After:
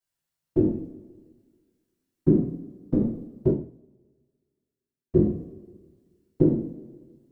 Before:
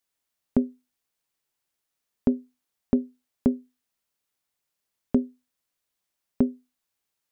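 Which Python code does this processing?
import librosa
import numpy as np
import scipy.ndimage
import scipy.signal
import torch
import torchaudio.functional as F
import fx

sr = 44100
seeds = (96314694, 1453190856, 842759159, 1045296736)

y = fx.peak_eq(x, sr, hz=100.0, db=14.0, octaves=1.6)
y = fx.level_steps(y, sr, step_db=13)
y = fx.whisperise(y, sr, seeds[0])
y = fx.rev_double_slope(y, sr, seeds[1], early_s=0.62, late_s=1.8, knee_db=-17, drr_db=-6.5)
y = fx.upward_expand(y, sr, threshold_db=-36.0, expansion=1.5, at=(3.51, 5.15), fade=0.02)
y = y * 10.0 ** (-1.5 / 20.0)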